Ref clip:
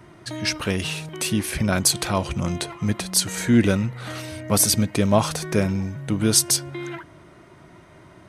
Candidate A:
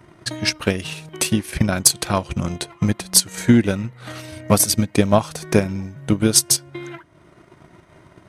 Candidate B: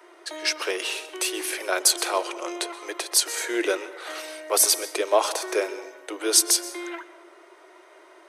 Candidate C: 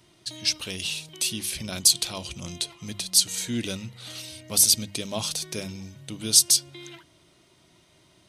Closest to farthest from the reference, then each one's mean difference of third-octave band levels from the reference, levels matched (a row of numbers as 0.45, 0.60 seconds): A, C, B; 4.0, 7.0, 10.0 decibels